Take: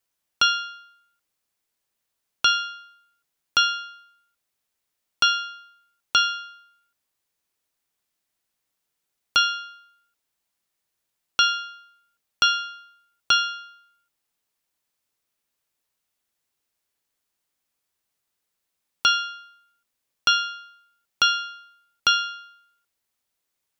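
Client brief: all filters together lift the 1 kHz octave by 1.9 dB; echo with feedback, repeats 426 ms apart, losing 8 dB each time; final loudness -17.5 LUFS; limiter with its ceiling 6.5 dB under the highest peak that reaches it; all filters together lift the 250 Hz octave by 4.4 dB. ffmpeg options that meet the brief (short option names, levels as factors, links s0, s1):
-af "equalizer=f=250:t=o:g=5.5,equalizer=f=1000:t=o:g=3.5,alimiter=limit=0.251:level=0:latency=1,aecho=1:1:426|852|1278|1704|2130:0.398|0.159|0.0637|0.0255|0.0102,volume=2.66"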